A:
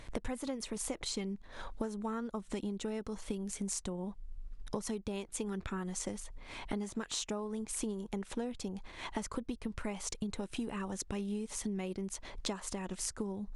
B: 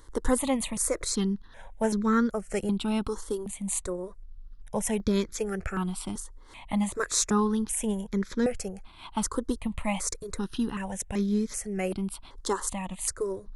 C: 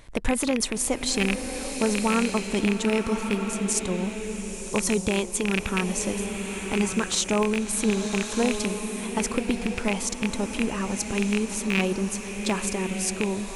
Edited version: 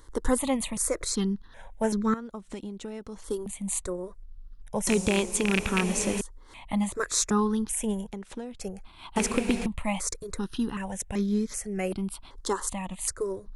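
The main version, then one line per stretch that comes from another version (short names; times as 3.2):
B
2.14–3.24 from A
4.87–6.21 from C
8.1–8.61 from A
9.16–9.66 from C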